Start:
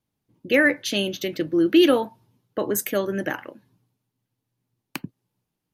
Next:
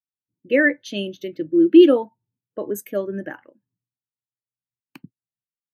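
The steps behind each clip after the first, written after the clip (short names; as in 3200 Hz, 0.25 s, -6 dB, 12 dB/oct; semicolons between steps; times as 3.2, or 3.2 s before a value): spectral expander 1.5:1; gain +5.5 dB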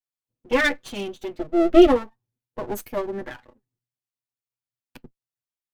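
minimum comb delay 8.1 ms; gain -1 dB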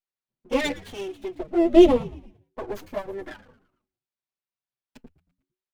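envelope flanger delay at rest 5.2 ms, full sweep at -15.5 dBFS; frequency-shifting echo 0.113 s, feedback 46%, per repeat -95 Hz, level -18.5 dB; running maximum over 5 samples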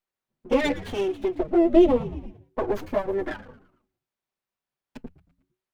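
high shelf 2800 Hz -10 dB; notches 60/120/180 Hz; compressor 2:1, threshold -31 dBFS, peak gain reduction 13 dB; gain +9 dB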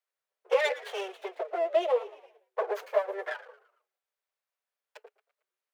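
rippled Chebyshev high-pass 420 Hz, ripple 3 dB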